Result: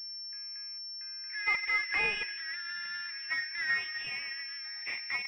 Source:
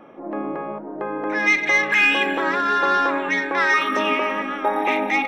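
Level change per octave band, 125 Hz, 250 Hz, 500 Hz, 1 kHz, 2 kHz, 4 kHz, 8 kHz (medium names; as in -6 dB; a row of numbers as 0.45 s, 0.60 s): no reading, -34.0 dB, -27.0 dB, -24.5 dB, -12.5 dB, -5.5 dB, under -20 dB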